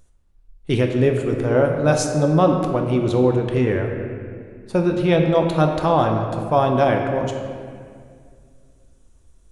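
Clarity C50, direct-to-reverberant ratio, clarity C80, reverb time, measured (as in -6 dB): 4.5 dB, 2.5 dB, 5.5 dB, 2.1 s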